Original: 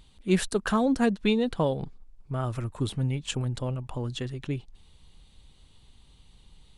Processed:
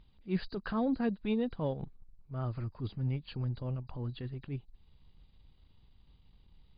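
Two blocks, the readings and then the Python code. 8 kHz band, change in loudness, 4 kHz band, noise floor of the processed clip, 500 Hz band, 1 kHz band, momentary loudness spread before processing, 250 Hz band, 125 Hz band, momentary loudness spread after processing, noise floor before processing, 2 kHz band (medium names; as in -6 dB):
under -40 dB, -7.5 dB, -14.0 dB, -64 dBFS, -9.0 dB, -10.0 dB, 11 LU, -7.0 dB, -5.5 dB, 10 LU, -57 dBFS, -11.5 dB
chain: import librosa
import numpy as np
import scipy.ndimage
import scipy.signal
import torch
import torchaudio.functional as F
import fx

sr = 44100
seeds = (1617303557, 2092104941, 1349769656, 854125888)

y = fx.freq_compress(x, sr, knee_hz=3800.0, ratio=4.0)
y = fx.transient(y, sr, attack_db=-9, sustain_db=-5)
y = fx.bass_treble(y, sr, bass_db=4, treble_db=-13)
y = F.gain(torch.from_numpy(y), -7.0).numpy()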